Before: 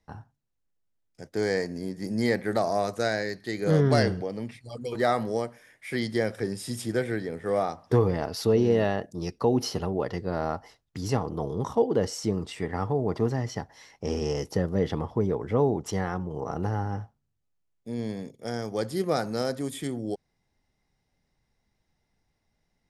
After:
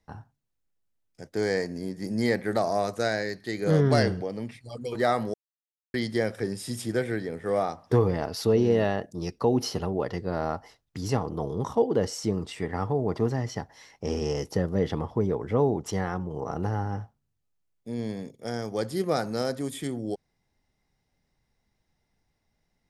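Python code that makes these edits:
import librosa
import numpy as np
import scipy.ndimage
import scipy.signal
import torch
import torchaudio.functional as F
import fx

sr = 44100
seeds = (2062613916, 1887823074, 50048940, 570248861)

y = fx.edit(x, sr, fx.silence(start_s=5.34, length_s=0.6), tone=tone)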